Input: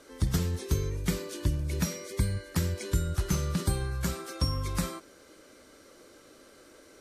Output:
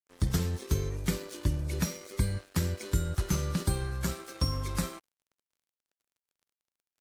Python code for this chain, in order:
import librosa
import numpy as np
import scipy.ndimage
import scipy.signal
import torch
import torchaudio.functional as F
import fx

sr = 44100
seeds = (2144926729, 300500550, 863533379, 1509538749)

y = np.sign(x) * np.maximum(np.abs(x) - 10.0 ** (-45.5 / 20.0), 0.0)